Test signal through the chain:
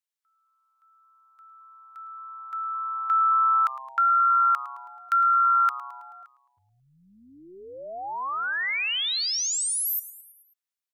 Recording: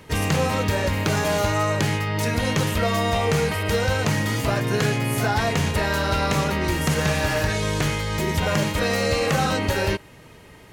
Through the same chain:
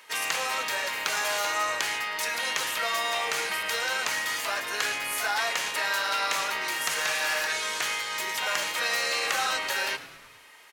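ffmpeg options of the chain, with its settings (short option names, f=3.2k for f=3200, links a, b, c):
-filter_complex "[0:a]highpass=1.1k,asplit=2[a][b];[b]asplit=5[c][d][e][f][g];[c]adelay=108,afreqshift=-130,volume=-16dB[h];[d]adelay=216,afreqshift=-260,volume=-20.9dB[i];[e]adelay=324,afreqshift=-390,volume=-25.8dB[j];[f]adelay=432,afreqshift=-520,volume=-30.6dB[k];[g]adelay=540,afreqshift=-650,volume=-35.5dB[l];[h][i][j][k][l]amix=inputs=5:normalize=0[m];[a][m]amix=inputs=2:normalize=0"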